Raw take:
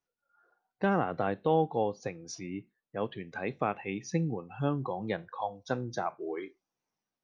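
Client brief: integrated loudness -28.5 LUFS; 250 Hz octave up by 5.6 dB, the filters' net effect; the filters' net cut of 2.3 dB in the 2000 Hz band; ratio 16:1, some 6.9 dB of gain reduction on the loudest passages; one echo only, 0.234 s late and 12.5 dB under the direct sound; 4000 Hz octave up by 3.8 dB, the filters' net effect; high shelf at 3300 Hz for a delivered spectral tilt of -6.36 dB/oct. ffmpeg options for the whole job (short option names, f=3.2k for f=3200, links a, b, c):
-af "equalizer=f=250:t=o:g=8,equalizer=f=2k:t=o:g=-4.5,highshelf=f=3.3k:g=-3,equalizer=f=4k:t=o:g=8.5,acompressor=threshold=-25dB:ratio=16,aecho=1:1:234:0.237,volume=5.5dB"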